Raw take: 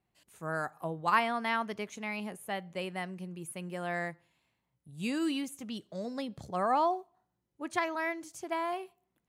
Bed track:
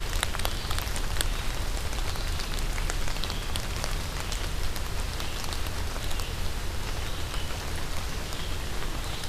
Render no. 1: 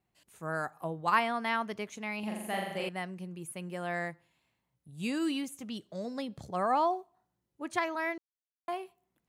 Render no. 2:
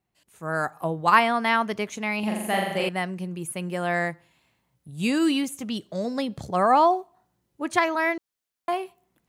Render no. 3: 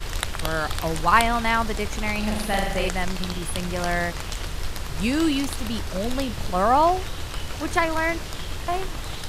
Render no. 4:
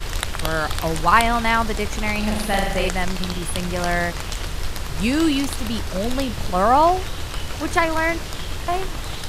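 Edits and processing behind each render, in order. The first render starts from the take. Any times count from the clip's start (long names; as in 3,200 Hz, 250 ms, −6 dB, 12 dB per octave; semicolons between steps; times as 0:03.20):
0:02.19–0:02.89: flutter between parallel walls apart 7.2 metres, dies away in 0.99 s; 0:08.18–0:08.68: silence
automatic gain control gain up to 9.5 dB
mix in bed track +0.5 dB
level +3 dB; brickwall limiter −2 dBFS, peak gain reduction 2 dB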